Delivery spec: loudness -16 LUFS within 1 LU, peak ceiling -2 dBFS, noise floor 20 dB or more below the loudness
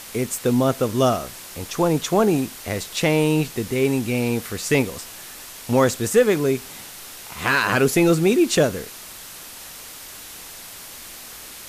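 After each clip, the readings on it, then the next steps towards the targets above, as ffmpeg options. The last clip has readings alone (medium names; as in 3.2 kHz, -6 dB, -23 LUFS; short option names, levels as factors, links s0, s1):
noise floor -39 dBFS; noise floor target -41 dBFS; loudness -20.5 LUFS; peak level -6.5 dBFS; loudness target -16.0 LUFS
-> -af "afftdn=nr=6:nf=-39"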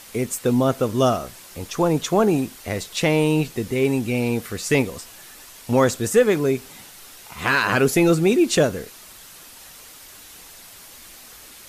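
noise floor -44 dBFS; loudness -20.5 LUFS; peak level -7.0 dBFS; loudness target -16.0 LUFS
-> -af "volume=1.68"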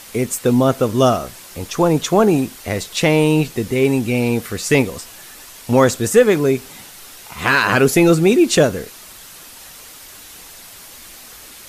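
loudness -16.0 LUFS; peak level -2.5 dBFS; noise floor -40 dBFS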